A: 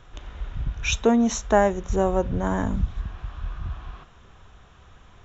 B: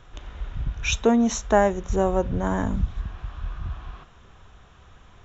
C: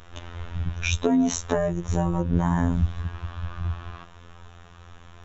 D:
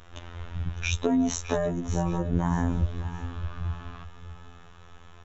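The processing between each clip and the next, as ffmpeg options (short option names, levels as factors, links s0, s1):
-af anull
-filter_complex "[0:a]acrossover=split=330[s0][s1];[s1]acompressor=threshold=0.0316:ratio=4[s2];[s0][s2]amix=inputs=2:normalize=0,afftfilt=real='hypot(re,im)*cos(PI*b)':imag='0':win_size=2048:overlap=0.75,volume=2.24"
-af "aecho=1:1:613|1226|1839:0.224|0.0739|0.0244,volume=0.708"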